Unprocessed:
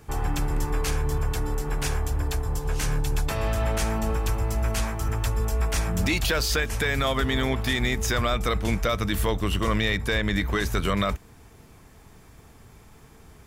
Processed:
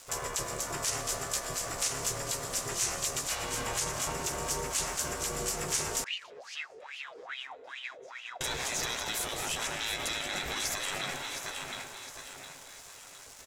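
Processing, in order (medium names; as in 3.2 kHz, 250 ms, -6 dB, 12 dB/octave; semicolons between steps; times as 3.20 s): feedback delay 711 ms, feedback 41%, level -10 dB; reverberation RT60 3.2 s, pre-delay 80 ms, DRR 11 dB; ring modulator 260 Hz; doubling 15 ms -9 dB; spectral gate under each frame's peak -10 dB weak; frequency-shifting echo 228 ms, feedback 30%, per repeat +150 Hz, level -13.5 dB; crackle 560 per s -45 dBFS; 6.04–8.41 s: wah-wah 2.4 Hz 430–3000 Hz, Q 10; peak limiter -25.5 dBFS, peak gain reduction 9.5 dB; peaking EQ 7 kHz +13.5 dB 1.5 oct; trim -1 dB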